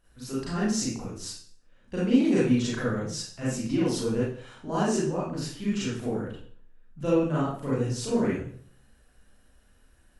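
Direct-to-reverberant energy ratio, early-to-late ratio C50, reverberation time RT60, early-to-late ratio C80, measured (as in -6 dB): -8.5 dB, -1.0 dB, 0.50 s, 5.0 dB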